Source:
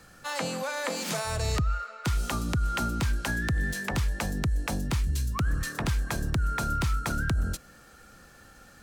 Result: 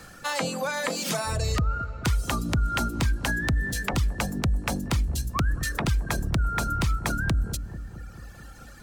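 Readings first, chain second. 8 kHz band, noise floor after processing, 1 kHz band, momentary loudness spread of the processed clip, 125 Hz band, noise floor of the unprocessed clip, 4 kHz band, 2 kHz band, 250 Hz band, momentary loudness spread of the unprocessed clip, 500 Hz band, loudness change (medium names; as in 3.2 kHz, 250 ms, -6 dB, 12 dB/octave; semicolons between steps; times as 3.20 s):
+3.0 dB, -46 dBFS, +2.5 dB, 11 LU, +2.0 dB, -53 dBFS, +3.0 dB, +2.5 dB, +3.0 dB, 3 LU, +2.5 dB, +2.5 dB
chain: reverb removal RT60 1.9 s; in parallel at +3 dB: compression, threshold -36 dBFS, peak gain reduction 11.5 dB; on the sum: feedback echo behind a low-pass 219 ms, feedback 69%, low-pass 580 Hz, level -11 dB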